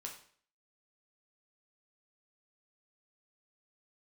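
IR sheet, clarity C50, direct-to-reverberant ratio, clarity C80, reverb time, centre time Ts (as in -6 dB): 8.0 dB, -0.5 dB, 11.5 dB, 0.50 s, 21 ms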